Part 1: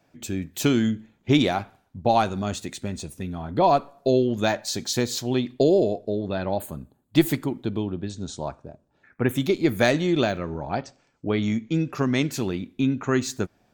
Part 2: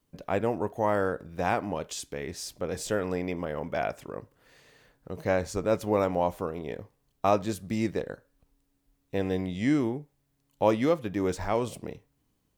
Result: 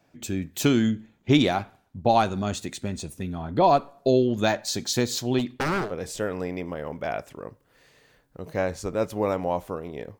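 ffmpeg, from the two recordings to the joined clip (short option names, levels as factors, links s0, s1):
-filter_complex "[0:a]asplit=3[s0][s1][s2];[s0]afade=t=out:st=5.38:d=0.02[s3];[s1]aeval=exprs='0.1*(abs(mod(val(0)/0.1+3,4)-2)-1)':c=same,afade=t=in:st=5.38:d=0.02,afade=t=out:st=5.94:d=0.02[s4];[s2]afade=t=in:st=5.94:d=0.02[s5];[s3][s4][s5]amix=inputs=3:normalize=0,apad=whole_dur=10.19,atrim=end=10.19,atrim=end=5.94,asetpts=PTS-STARTPTS[s6];[1:a]atrim=start=2.49:end=6.9,asetpts=PTS-STARTPTS[s7];[s6][s7]acrossfade=d=0.16:c1=tri:c2=tri"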